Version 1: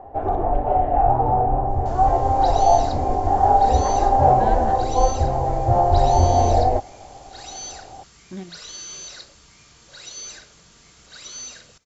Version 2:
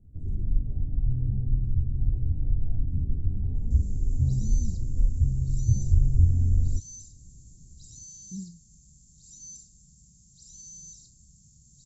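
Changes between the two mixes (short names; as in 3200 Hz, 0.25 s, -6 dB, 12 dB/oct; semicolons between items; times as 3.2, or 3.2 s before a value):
second sound: entry +1.85 s; master: add Chebyshev band-stop 180–7500 Hz, order 3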